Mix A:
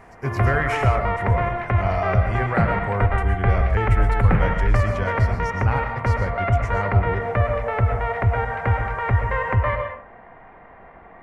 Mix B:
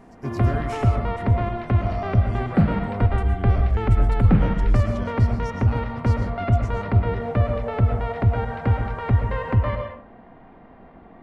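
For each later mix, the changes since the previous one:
speech -7.0 dB; master: add graphic EQ 250/500/1000/2000/4000/8000 Hz +9/-3/-4/-10/+6/+3 dB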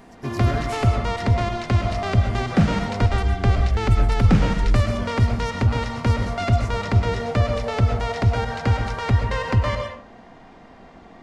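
background: remove air absorption 420 m; master: add high shelf 4400 Hz +8.5 dB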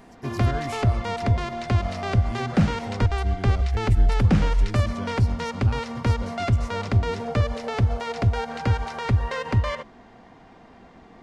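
reverb: off

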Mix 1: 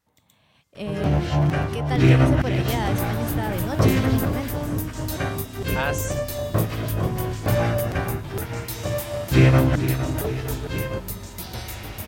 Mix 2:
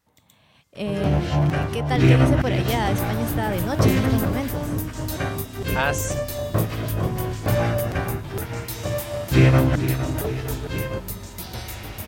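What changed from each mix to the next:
speech +3.5 dB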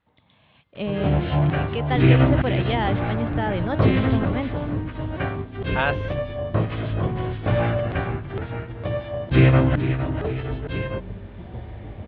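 second sound: add running mean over 33 samples; master: add steep low-pass 3700 Hz 48 dB/oct

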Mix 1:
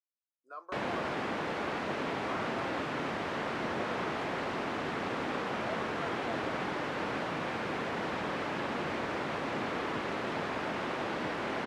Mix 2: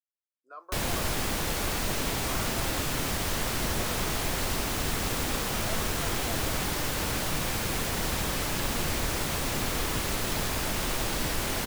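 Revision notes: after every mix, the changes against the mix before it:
background: remove BPF 220–2000 Hz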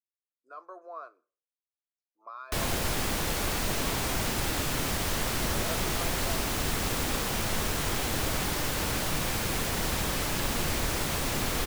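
background: entry +1.80 s

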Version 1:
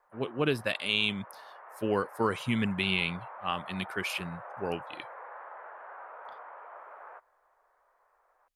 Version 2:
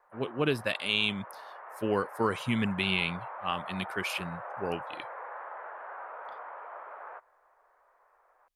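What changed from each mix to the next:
background +3.5 dB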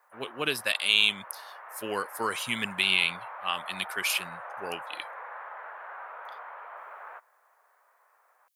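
master: add tilt +4 dB/oct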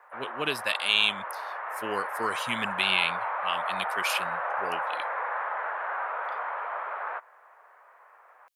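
background +10.5 dB; master: add high shelf 6800 Hz -7 dB

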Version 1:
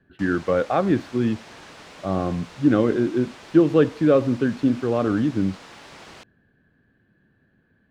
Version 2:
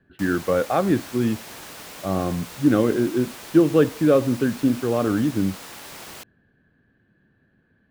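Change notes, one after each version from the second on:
background: remove air absorption 100 m; reverb: on, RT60 0.35 s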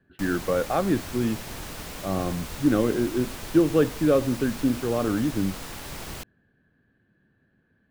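speech -3.5 dB; background: remove HPF 390 Hz 6 dB/oct

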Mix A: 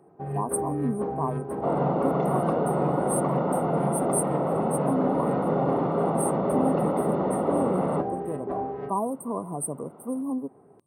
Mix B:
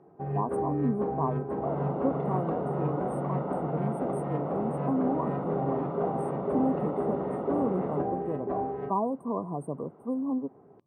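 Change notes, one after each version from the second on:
second sound -7.5 dB; master: add air absorption 220 m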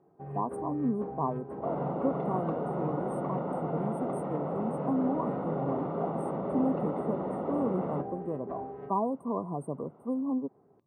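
first sound -8.0 dB; reverb: off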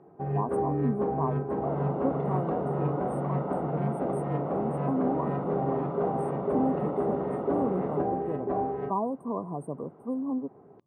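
first sound +10.0 dB

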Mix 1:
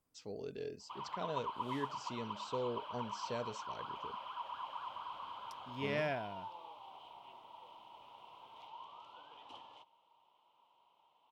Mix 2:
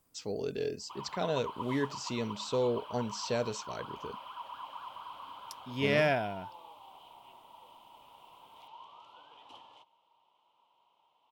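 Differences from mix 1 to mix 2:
speech +9.0 dB; master: add high shelf 6900 Hz +7 dB

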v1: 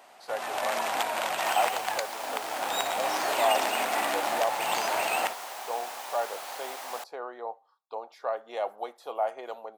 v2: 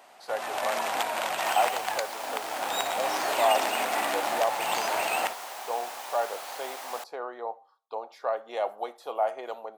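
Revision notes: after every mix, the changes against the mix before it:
speech: send +10.0 dB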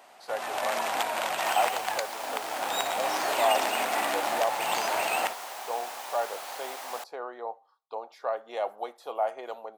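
speech: send -6.5 dB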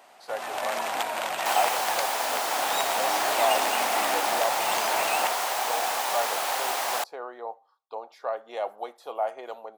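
second sound +11.5 dB

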